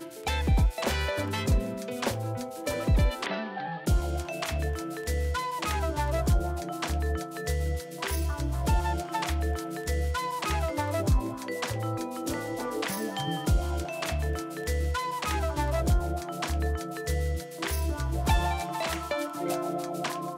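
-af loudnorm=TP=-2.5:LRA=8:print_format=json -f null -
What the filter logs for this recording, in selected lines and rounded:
"input_i" : "-30.2",
"input_tp" : "-12.6",
"input_lra" : "1.0",
"input_thresh" : "-40.2",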